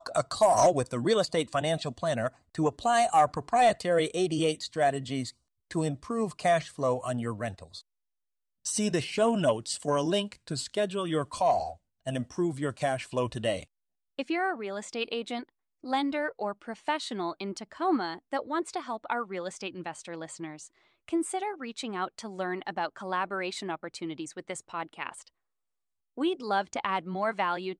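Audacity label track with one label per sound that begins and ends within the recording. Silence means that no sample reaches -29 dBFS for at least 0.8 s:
8.660000	25.090000	sound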